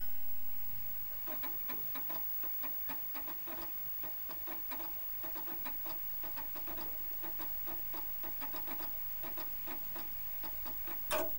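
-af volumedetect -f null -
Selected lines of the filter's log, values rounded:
mean_volume: -38.5 dB
max_volume: -21.2 dB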